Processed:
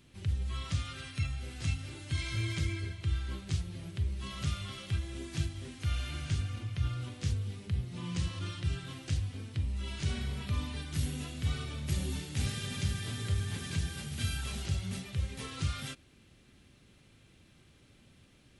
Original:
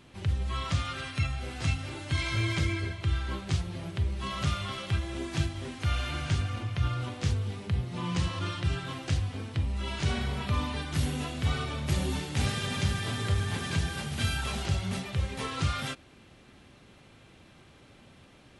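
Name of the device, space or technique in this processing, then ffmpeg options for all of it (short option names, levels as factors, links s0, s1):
smiley-face EQ: -af "lowshelf=f=120:g=4,equalizer=f=840:t=o:w=1.6:g=-7.5,highshelf=f=7100:g=6.5,volume=0.501"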